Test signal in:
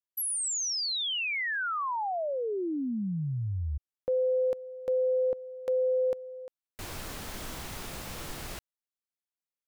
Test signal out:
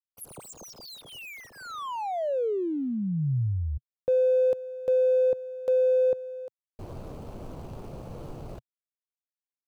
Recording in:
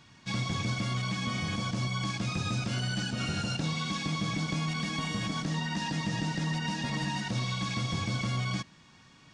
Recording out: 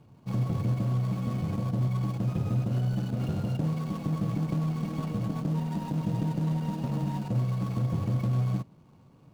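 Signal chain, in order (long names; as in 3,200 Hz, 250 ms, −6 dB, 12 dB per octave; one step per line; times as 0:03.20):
running median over 25 samples
graphic EQ with 10 bands 125 Hz +6 dB, 500 Hz +5 dB, 2,000 Hz −4 dB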